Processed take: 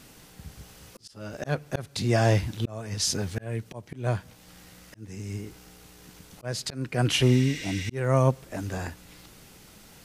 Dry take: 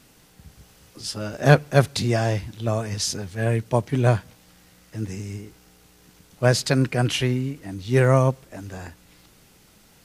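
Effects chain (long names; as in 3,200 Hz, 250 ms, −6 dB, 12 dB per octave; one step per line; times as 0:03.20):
healed spectral selection 0:07.25–0:07.88, 1,500–8,700 Hz after
volume swells 646 ms
level +3.5 dB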